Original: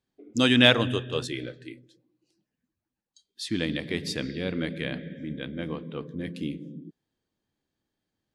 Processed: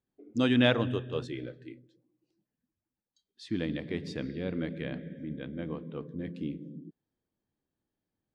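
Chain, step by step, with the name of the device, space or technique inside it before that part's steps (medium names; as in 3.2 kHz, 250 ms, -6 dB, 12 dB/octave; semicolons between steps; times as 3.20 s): through cloth (low-pass 7.3 kHz 12 dB/octave; treble shelf 2 kHz -11.5 dB); trim -3 dB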